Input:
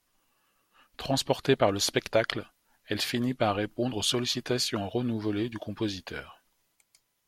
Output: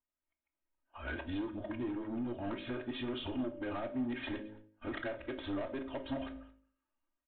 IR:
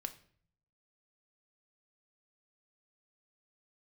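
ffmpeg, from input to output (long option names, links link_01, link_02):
-filter_complex "[0:a]areverse,agate=range=-21dB:threshold=-54dB:ratio=16:detection=peak,lowpass=2000,equalizer=frequency=73:width=2.6:gain=7.5,aecho=1:1:3.2:0.79,bandreject=frequency=53.28:width_type=h:width=4,bandreject=frequency=106.56:width_type=h:width=4,bandreject=frequency=159.84:width_type=h:width=4,bandreject=frequency=213.12:width_type=h:width=4,bandreject=frequency=266.4:width_type=h:width=4,bandreject=frequency=319.68:width_type=h:width=4,bandreject=frequency=372.96:width_type=h:width=4,bandreject=frequency=426.24:width_type=h:width=4,bandreject=frequency=479.52:width_type=h:width=4,bandreject=frequency=532.8:width_type=h:width=4,bandreject=frequency=586.08:width_type=h:width=4,acompressor=threshold=-34dB:ratio=10,flanger=delay=5.4:depth=1.6:regen=-89:speed=0.39:shape=triangular,aresample=8000,asoftclip=type=tanh:threshold=-39.5dB,aresample=44100,aecho=1:1:219:0.0668[link_01];[1:a]atrim=start_sample=2205,afade=type=out:start_time=0.18:duration=0.01,atrim=end_sample=8379[link_02];[link_01][link_02]afir=irnorm=-1:irlink=0,volume=9dB"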